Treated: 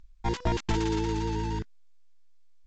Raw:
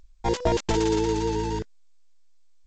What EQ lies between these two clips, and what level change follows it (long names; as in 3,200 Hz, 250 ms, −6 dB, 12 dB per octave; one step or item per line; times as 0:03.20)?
low-pass filter 2,900 Hz 6 dB per octave
parametric band 530 Hz −14.5 dB 0.84 octaves
0.0 dB